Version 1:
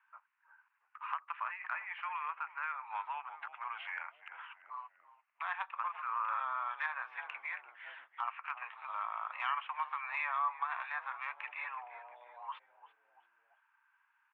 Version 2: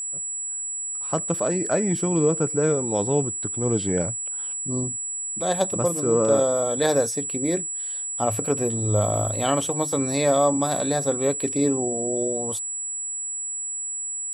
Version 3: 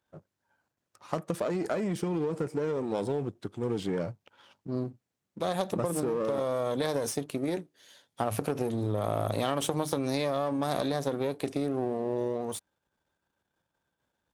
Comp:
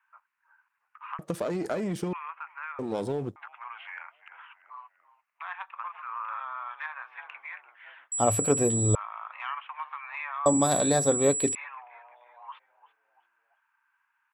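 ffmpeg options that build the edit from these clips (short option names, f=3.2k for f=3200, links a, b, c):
-filter_complex "[2:a]asplit=2[a][b];[1:a]asplit=2[c][d];[0:a]asplit=5[e][f][g][h][i];[e]atrim=end=1.192[j];[a]atrim=start=1.188:end=2.132[k];[f]atrim=start=2.128:end=2.792[l];[b]atrim=start=2.788:end=3.362[m];[g]atrim=start=3.358:end=8.122[n];[c]atrim=start=8.118:end=8.952[o];[h]atrim=start=8.948:end=10.462[p];[d]atrim=start=10.458:end=11.552[q];[i]atrim=start=11.548[r];[j][k]acrossfade=d=0.004:c1=hsin:c2=hsin[s];[s][l]acrossfade=d=0.004:c1=hsin:c2=hsin[t];[t][m]acrossfade=d=0.004:c1=hsin:c2=hsin[u];[u][n]acrossfade=d=0.004:c1=hsin:c2=hsin[v];[v][o]acrossfade=d=0.004:c1=hsin:c2=hsin[w];[w][p]acrossfade=d=0.004:c1=hsin:c2=hsin[x];[x][q]acrossfade=d=0.004:c1=hsin:c2=hsin[y];[y][r]acrossfade=d=0.004:c1=hsin:c2=hsin"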